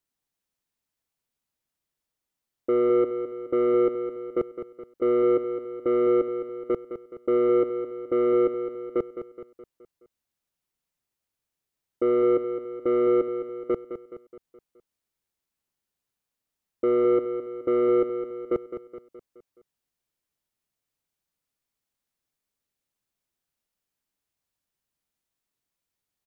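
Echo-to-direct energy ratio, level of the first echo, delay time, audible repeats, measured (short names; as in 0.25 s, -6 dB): -9.0 dB, -10.0 dB, 0.211 s, 5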